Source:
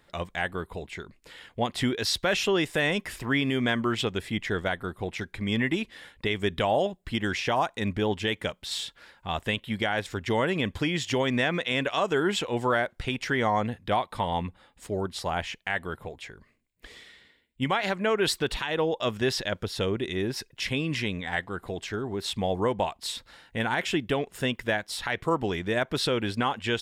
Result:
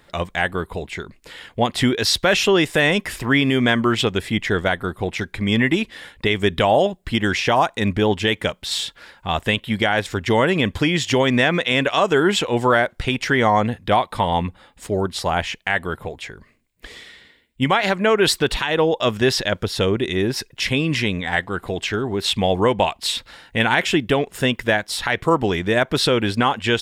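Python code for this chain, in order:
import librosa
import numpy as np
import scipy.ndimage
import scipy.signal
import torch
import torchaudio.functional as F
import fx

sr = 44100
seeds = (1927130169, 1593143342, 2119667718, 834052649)

y = fx.dynamic_eq(x, sr, hz=2700.0, q=1.5, threshold_db=-49.0, ratio=4.0, max_db=6, at=(21.46, 23.79))
y = y * librosa.db_to_amplitude(8.5)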